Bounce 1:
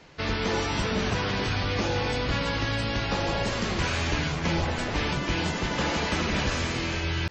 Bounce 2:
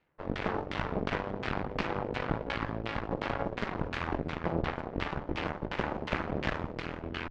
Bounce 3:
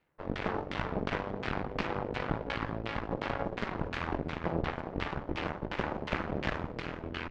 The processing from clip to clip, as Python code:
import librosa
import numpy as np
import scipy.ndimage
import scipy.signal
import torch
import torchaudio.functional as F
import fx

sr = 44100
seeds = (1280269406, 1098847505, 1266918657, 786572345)

y1 = fx.cheby_harmonics(x, sr, harmonics=(4, 7), levels_db=(-9, -16), full_scale_db=-12.5)
y1 = fx.filter_lfo_lowpass(y1, sr, shape='saw_down', hz=2.8, low_hz=410.0, high_hz=3000.0, q=1.0)
y1 = fx.hum_notches(y1, sr, base_hz=50, count=2)
y1 = y1 * librosa.db_to_amplitude(-4.5)
y2 = y1 + 10.0 ** (-16.5 / 20.0) * np.pad(y1, (int(411 * sr / 1000.0), 0))[:len(y1)]
y2 = y2 * librosa.db_to_amplitude(-1.0)